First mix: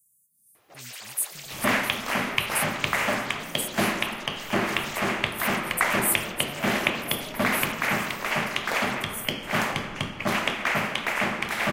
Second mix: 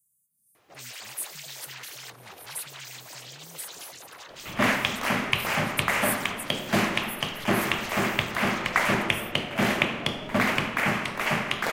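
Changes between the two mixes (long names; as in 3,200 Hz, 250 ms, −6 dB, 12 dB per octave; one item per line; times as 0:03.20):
speech −6.5 dB
second sound: entry +2.95 s
master: add parametric band 120 Hz +3.5 dB 1.7 octaves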